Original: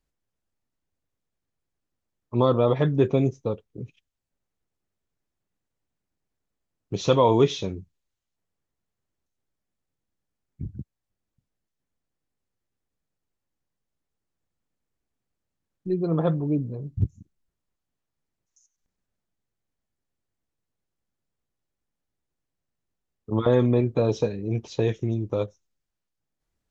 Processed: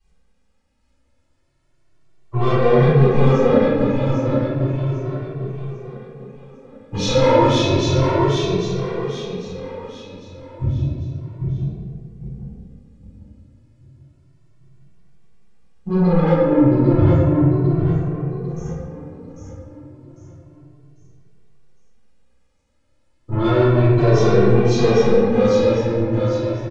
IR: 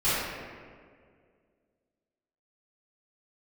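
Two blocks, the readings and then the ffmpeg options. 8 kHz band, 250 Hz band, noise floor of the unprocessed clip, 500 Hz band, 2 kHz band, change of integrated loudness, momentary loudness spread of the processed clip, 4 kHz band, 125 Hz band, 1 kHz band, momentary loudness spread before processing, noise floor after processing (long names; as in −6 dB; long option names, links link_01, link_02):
can't be measured, +10.0 dB, −84 dBFS, +9.0 dB, +13.5 dB, +6.5 dB, 20 LU, +10.5 dB, +11.0 dB, +9.0 dB, 18 LU, −61 dBFS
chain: -filter_complex "[0:a]bandreject=frequency=72.95:width_type=h:width=4,bandreject=frequency=145.9:width_type=h:width=4,bandreject=frequency=218.85:width_type=h:width=4,bandreject=frequency=291.8:width_type=h:width=4,bandreject=frequency=364.75:width_type=h:width=4,bandreject=frequency=437.7:width_type=h:width=4,bandreject=frequency=510.65:width_type=h:width=4,bandreject=frequency=583.6:width_type=h:width=4,bandreject=frequency=656.55:width_type=h:width=4,bandreject=frequency=729.5:width_type=h:width=4,bandreject=frequency=802.45:width_type=h:width=4,bandreject=frequency=875.4:width_type=h:width=4,bandreject=frequency=948.35:width_type=h:width=4,bandreject=frequency=1021.3:width_type=h:width=4,bandreject=frequency=1094.25:width_type=h:width=4,bandreject=frequency=1167.2:width_type=h:width=4,bandreject=frequency=1240.15:width_type=h:width=4,bandreject=frequency=1313.1:width_type=h:width=4,bandreject=frequency=1386.05:width_type=h:width=4,bandreject=frequency=1459:width_type=h:width=4,bandreject=frequency=1531.95:width_type=h:width=4,bandreject=frequency=1604.9:width_type=h:width=4,bandreject=frequency=1677.85:width_type=h:width=4,bandreject=frequency=1750.8:width_type=h:width=4,bandreject=frequency=1823.75:width_type=h:width=4,bandreject=frequency=1896.7:width_type=h:width=4,bandreject=frequency=1969.65:width_type=h:width=4,asplit=2[link_01][link_02];[link_02]acompressor=threshold=-33dB:ratio=6,volume=-2dB[link_03];[link_01][link_03]amix=inputs=2:normalize=0,alimiter=limit=-12dB:level=0:latency=1:release=163,asoftclip=type=tanh:threshold=-24dB,aecho=1:1:798|1596|2394|3192|3990:0.631|0.259|0.106|0.0435|0.0178[link_04];[1:a]atrim=start_sample=2205[link_05];[link_04][link_05]afir=irnorm=-1:irlink=0,aresample=22050,aresample=44100,asplit=2[link_06][link_07];[link_07]adelay=2.1,afreqshift=0.32[link_08];[link_06][link_08]amix=inputs=2:normalize=1,volume=2dB"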